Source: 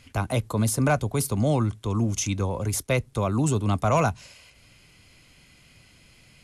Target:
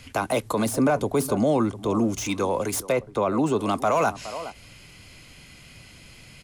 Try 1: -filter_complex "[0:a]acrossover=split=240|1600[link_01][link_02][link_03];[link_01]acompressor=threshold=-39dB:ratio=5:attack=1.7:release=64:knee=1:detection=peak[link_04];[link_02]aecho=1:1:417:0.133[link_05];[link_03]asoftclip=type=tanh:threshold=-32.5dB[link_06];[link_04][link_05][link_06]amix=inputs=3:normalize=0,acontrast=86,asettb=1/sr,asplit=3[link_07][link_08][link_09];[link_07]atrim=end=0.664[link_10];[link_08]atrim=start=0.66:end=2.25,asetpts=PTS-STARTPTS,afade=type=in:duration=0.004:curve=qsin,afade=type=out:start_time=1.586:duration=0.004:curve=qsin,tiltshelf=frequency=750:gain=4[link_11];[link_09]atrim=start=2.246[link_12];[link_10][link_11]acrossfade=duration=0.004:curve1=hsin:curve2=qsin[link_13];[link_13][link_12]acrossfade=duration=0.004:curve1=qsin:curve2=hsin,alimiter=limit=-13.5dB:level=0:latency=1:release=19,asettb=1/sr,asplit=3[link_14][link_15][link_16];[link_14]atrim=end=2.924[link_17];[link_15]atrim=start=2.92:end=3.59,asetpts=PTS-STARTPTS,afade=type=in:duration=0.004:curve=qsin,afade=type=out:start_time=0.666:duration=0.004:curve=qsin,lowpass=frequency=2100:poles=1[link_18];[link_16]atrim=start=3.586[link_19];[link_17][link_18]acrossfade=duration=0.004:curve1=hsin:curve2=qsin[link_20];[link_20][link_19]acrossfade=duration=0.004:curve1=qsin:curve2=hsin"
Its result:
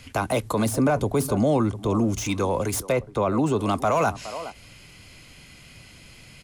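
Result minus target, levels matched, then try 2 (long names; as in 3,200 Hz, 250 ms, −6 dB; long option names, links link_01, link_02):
downward compressor: peak gain reduction −8.5 dB
-filter_complex "[0:a]acrossover=split=240|1600[link_01][link_02][link_03];[link_01]acompressor=threshold=-49.5dB:ratio=5:attack=1.7:release=64:knee=1:detection=peak[link_04];[link_02]aecho=1:1:417:0.133[link_05];[link_03]asoftclip=type=tanh:threshold=-32.5dB[link_06];[link_04][link_05][link_06]amix=inputs=3:normalize=0,acontrast=86,asettb=1/sr,asplit=3[link_07][link_08][link_09];[link_07]atrim=end=0.664[link_10];[link_08]atrim=start=0.66:end=2.25,asetpts=PTS-STARTPTS,afade=type=in:duration=0.004:curve=qsin,afade=type=out:start_time=1.586:duration=0.004:curve=qsin,tiltshelf=frequency=750:gain=4[link_11];[link_09]atrim=start=2.246[link_12];[link_10][link_11]acrossfade=duration=0.004:curve1=hsin:curve2=qsin[link_13];[link_13][link_12]acrossfade=duration=0.004:curve1=qsin:curve2=hsin,alimiter=limit=-13.5dB:level=0:latency=1:release=19,asettb=1/sr,asplit=3[link_14][link_15][link_16];[link_14]atrim=end=2.924[link_17];[link_15]atrim=start=2.92:end=3.59,asetpts=PTS-STARTPTS,afade=type=in:duration=0.004:curve=qsin,afade=type=out:start_time=0.666:duration=0.004:curve=qsin,lowpass=frequency=2100:poles=1[link_18];[link_16]atrim=start=3.586[link_19];[link_17][link_18]acrossfade=duration=0.004:curve1=hsin:curve2=qsin[link_20];[link_20][link_19]acrossfade=duration=0.004:curve1=qsin:curve2=hsin"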